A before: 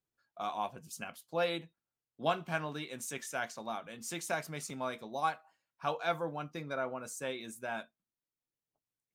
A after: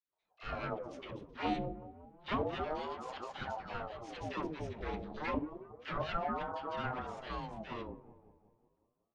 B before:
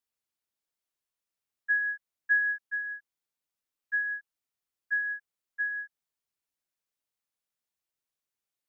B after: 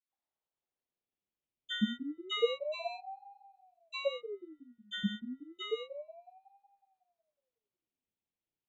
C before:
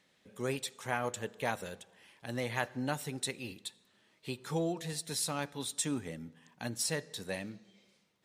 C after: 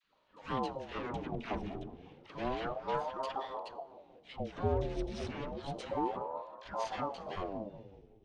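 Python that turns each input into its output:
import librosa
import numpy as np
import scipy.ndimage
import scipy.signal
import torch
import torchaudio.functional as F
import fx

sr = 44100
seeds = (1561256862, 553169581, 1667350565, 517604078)

p1 = fx.lower_of_two(x, sr, delay_ms=0.34)
p2 = scipy.signal.sosfilt(scipy.signal.bessel(4, 3200.0, 'lowpass', norm='mag', fs=sr, output='sos'), p1)
p3 = fx.low_shelf(p2, sr, hz=270.0, db=10.0)
p4 = fx.dispersion(p3, sr, late='lows', ms=129.0, hz=640.0)
p5 = p4 + fx.echo_wet_lowpass(p4, sr, ms=184, feedback_pct=54, hz=700.0, wet_db=-12.0, dry=0)
y = fx.ring_lfo(p5, sr, carrier_hz=500.0, swing_pct=60, hz=0.3)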